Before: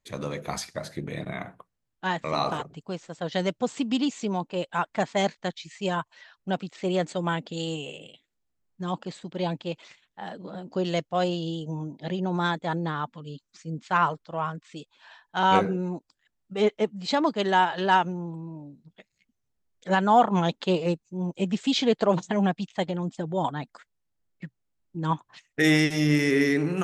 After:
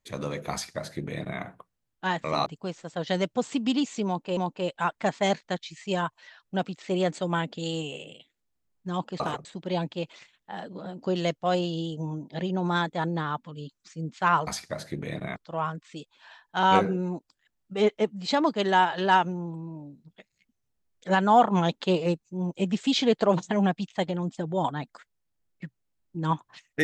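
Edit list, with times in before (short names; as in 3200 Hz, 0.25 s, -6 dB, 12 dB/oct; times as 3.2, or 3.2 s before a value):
0.52–1.41 copy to 14.16
2.46–2.71 move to 9.14
4.31–4.62 loop, 2 plays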